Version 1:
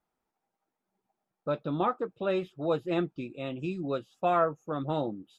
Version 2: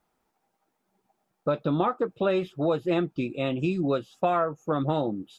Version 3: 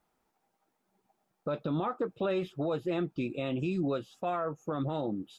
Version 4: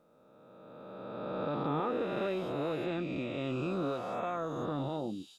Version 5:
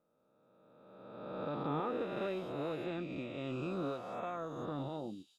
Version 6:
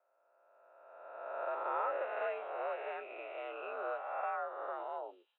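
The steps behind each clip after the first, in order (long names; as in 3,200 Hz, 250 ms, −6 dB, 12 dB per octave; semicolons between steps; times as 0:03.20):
downward compressor 6 to 1, threshold −30 dBFS, peak gain reduction 10 dB; level +9 dB
brickwall limiter −21 dBFS, peak gain reduction 10 dB; level −2 dB
peak hold with a rise ahead of every peak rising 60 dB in 2.56 s; level −6 dB
expander for the loud parts 1.5 to 1, over −50 dBFS; level −3 dB
single-sideband voice off tune +68 Hz 490–2,500 Hz; level +4 dB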